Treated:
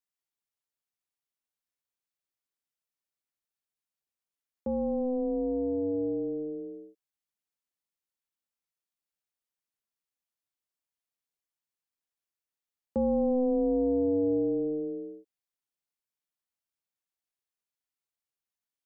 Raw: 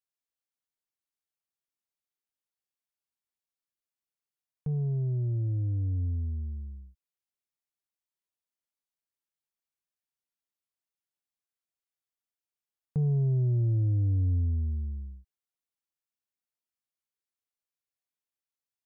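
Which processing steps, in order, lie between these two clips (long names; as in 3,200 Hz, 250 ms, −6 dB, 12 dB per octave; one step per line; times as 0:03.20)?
dynamic equaliser 440 Hz, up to +5 dB, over −53 dBFS, Q 2.6
ring modulation 380 Hz
level +2 dB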